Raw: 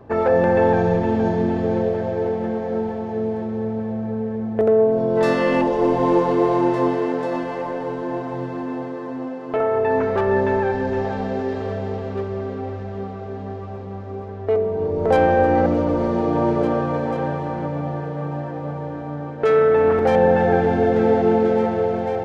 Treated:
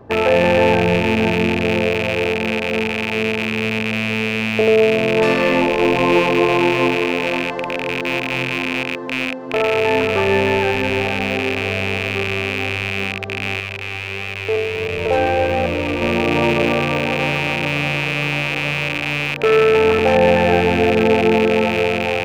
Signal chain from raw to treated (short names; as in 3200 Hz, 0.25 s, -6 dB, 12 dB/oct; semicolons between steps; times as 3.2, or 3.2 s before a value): rattling part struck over -33 dBFS, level -11 dBFS; 13.6–16.02 flange 1.5 Hz, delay 1.5 ms, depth 1.2 ms, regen -43%; gain +2 dB